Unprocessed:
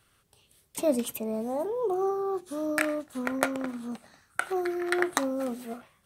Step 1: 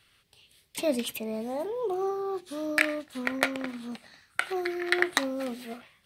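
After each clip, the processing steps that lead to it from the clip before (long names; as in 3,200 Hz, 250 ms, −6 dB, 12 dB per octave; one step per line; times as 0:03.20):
flat-topped bell 3,000 Hz +9 dB
level −2 dB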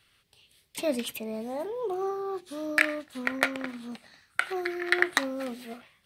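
dynamic equaliser 1,600 Hz, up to +4 dB, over −42 dBFS, Q 1.4
level −1.5 dB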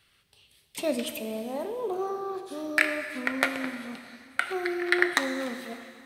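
dense smooth reverb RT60 2.3 s, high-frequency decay 1×, DRR 7 dB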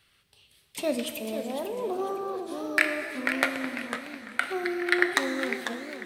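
feedback echo with a swinging delay time 501 ms, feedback 33%, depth 199 cents, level −9 dB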